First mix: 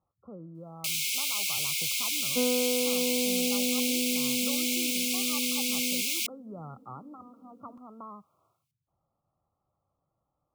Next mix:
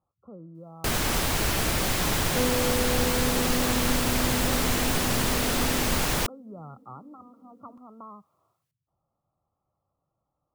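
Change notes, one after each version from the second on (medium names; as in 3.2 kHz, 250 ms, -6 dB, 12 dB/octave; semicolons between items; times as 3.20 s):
first sound: remove brick-wall FIR high-pass 2.1 kHz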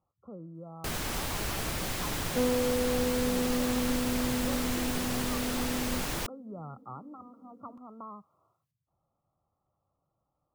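first sound -8.0 dB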